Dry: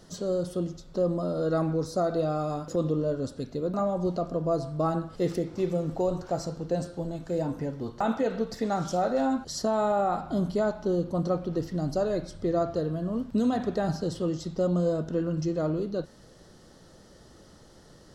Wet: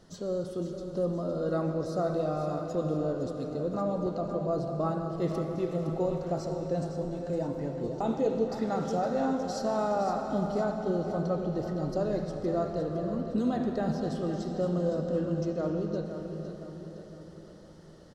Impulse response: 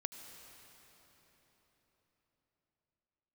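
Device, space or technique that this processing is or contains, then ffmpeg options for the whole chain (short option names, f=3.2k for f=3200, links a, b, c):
swimming-pool hall: -filter_complex "[1:a]atrim=start_sample=2205[a];[0:a][a]afir=irnorm=-1:irlink=0,highshelf=f=5.6k:g=-7,asettb=1/sr,asplit=3[b][c][d];[b]atrim=end=7.834[e];[c]atrim=start=7.83:end=8.48,asetpts=PTS-STARTPTS,afade=t=in:d=0.004:c=qsin,afade=t=out:st=0.646:d=0.004:c=qsin,equalizer=f=400:t=o:w=0.67:g=7,equalizer=f=1.6k:t=o:w=0.67:g=-12,equalizer=f=6.3k:t=o:w=0.67:g=6[f];[d]atrim=start=8.476[g];[e][f]acrossfade=d=0.004:c1=hsin:c2=qsin[h];[h][g]acrossfade=d=0.004:c1=qsin:c2=hsin,aecho=1:1:512|1024|1536|2048|2560:0.335|0.157|0.074|0.0348|0.0163,volume=-1.5dB"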